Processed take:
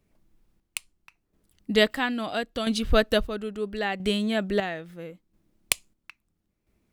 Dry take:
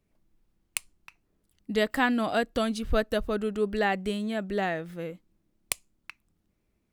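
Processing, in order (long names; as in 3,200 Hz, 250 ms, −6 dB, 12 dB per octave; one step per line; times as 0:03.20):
dynamic equaliser 3,400 Hz, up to +6 dB, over −47 dBFS, Q 1.1
square-wave tremolo 0.75 Hz, depth 60%, duty 45%
level +4.5 dB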